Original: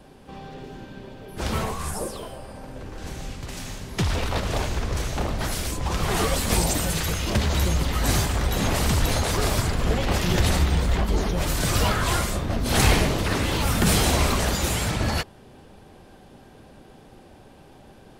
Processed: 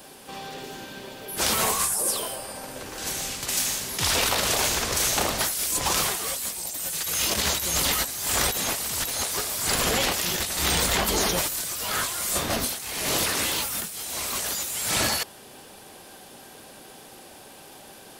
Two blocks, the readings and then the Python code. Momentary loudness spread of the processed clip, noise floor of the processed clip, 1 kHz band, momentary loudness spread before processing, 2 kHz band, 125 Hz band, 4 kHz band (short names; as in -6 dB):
12 LU, -47 dBFS, -1.5 dB, 17 LU, 0.0 dB, -13.5 dB, +3.0 dB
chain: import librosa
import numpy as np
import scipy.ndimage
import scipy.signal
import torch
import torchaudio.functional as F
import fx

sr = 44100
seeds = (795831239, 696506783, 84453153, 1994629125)

y = fx.riaa(x, sr, side='recording')
y = fx.over_compress(y, sr, threshold_db=-27.0, ratio=-1.0)